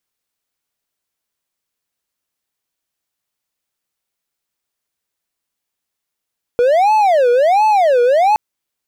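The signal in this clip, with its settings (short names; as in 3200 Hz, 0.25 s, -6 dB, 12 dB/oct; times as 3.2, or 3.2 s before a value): siren wail 480–868 Hz 1.4/s triangle -7 dBFS 1.77 s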